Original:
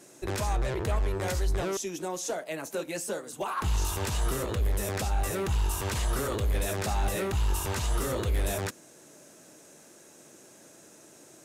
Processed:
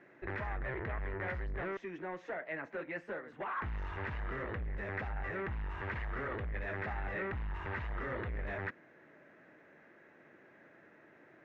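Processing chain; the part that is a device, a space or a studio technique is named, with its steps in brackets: overdriven synthesiser ladder filter (saturation -28.5 dBFS, distortion -11 dB; four-pole ladder low-pass 2.1 kHz, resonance 65%); trim +4.5 dB

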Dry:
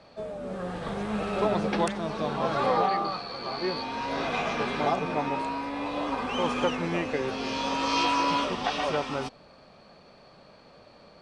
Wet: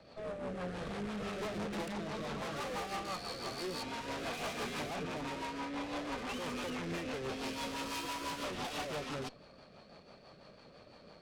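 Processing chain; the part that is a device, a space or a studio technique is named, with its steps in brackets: 4.33–4.88 s: treble shelf 3.1 kHz +6 dB; overdriven rotary cabinet (valve stage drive 39 dB, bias 0.8; rotary cabinet horn 6 Hz); trim +3.5 dB

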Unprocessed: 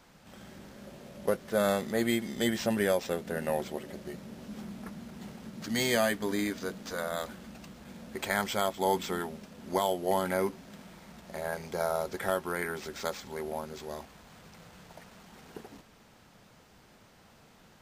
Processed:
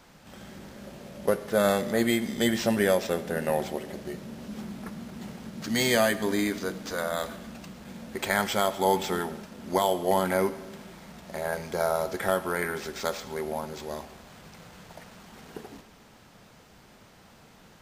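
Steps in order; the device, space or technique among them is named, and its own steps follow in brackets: saturated reverb return (on a send at -12 dB: reverberation RT60 1.1 s, pre-delay 22 ms + saturation -21.5 dBFS, distortion -18 dB); on the sum: trim +4 dB

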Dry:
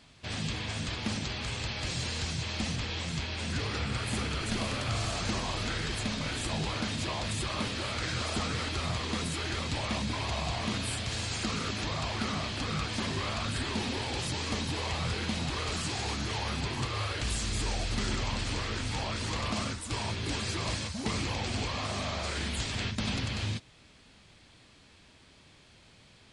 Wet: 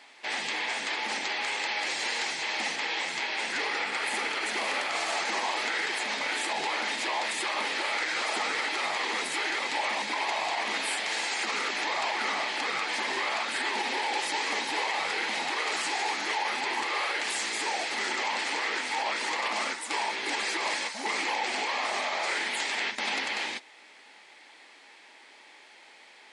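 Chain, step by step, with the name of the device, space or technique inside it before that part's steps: laptop speaker (high-pass 330 Hz 24 dB/octave; peaking EQ 850 Hz +11.5 dB 0.29 oct; peaking EQ 2 kHz +10.5 dB 0.58 oct; peak limiter -22.5 dBFS, peak gain reduction 6 dB); trim +2.5 dB

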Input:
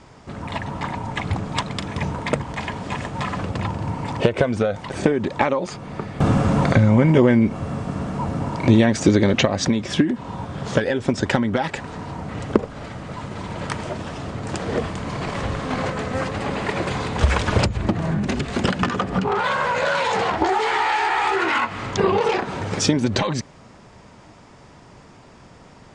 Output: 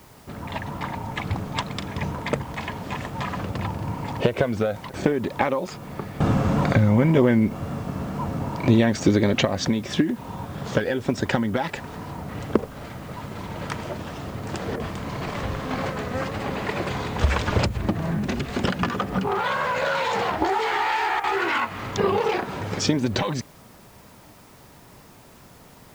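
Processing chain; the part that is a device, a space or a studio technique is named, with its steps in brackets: worn cassette (low-pass 7.8 kHz; wow and flutter; level dips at 4.90/14.76/21.20 s, 36 ms -8 dB; white noise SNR 31 dB); trim -3 dB

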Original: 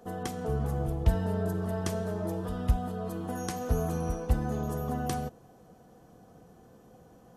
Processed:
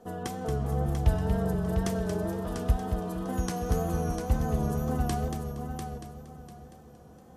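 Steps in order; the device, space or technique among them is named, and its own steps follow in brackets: multi-head tape echo (multi-head delay 232 ms, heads first and third, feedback 41%, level -7 dB; wow and flutter 47 cents)

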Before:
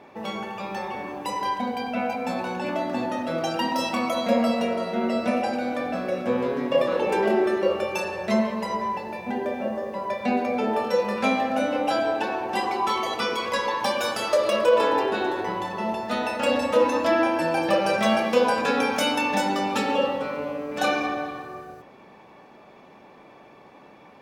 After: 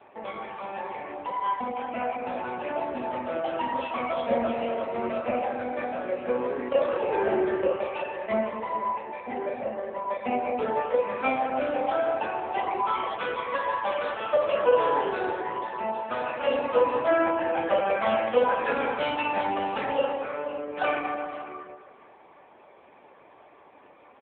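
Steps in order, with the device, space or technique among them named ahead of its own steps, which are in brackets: satellite phone (band-pass 350–3100 Hz; delay 505 ms -16.5 dB; AMR-NB 6.7 kbps 8 kHz)

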